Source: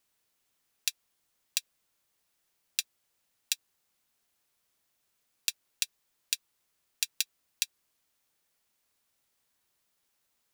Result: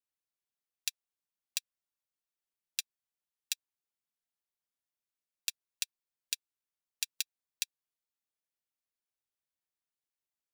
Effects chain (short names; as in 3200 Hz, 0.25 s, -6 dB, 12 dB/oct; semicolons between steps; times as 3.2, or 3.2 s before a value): upward expander 2.5:1, over -37 dBFS; gain -4.5 dB